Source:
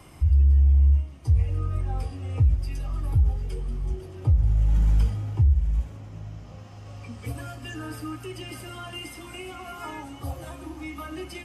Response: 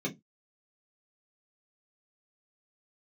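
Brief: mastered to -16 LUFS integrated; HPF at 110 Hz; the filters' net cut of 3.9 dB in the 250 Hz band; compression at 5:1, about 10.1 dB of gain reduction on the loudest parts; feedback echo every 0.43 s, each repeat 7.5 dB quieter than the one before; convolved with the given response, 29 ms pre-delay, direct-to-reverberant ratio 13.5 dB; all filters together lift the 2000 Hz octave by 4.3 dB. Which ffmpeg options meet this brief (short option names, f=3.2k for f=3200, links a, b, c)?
-filter_complex "[0:a]highpass=110,equalizer=f=250:t=o:g=-5.5,equalizer=f=2k:t=o:g=5.5,acompressor=threshold=-32dB:ratio=5,aecho=1:1:430|860|1290|1720|2150:0.422|0.177|0.0744|0.0312|0.0131,asplit=2[a][b];[1:a]atrim=start_sample=2205,adelay=29[c];[b][c]afir=irnorm=-1:irlink=0,volume=-18dB[d];[a][d]amix=inputs=2:normalize=0,volume=21dB"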